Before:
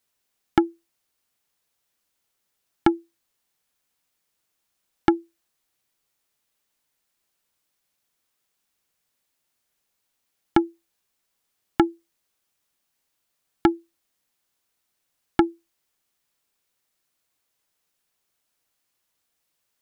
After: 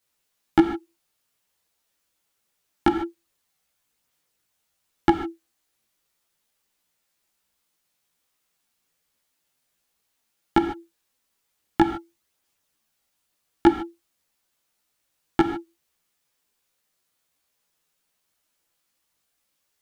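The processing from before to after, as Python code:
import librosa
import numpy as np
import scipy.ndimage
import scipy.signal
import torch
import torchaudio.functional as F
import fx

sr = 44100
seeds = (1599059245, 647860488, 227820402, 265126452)

y = fx.rev_gated(x, sr, seeds[0], gate_ms=170, shape='flat', drr_db=6.5)
y = fx.chorus_voices(y, sr, voices=2, hz=0.6, base_ms=15, depth_ms=4.2, mix_pct=50)
y = y * 10.0 ** (4.0 / 20.0)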